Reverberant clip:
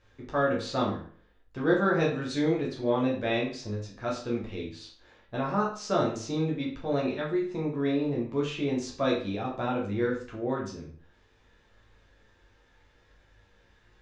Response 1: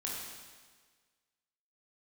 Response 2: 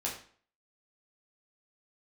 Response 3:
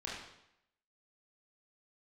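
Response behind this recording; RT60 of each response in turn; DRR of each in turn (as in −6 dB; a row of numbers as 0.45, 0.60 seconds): 2; 1.5, 0.50, 0.80 seconds; −4.5, −4.5, −6.0 decibels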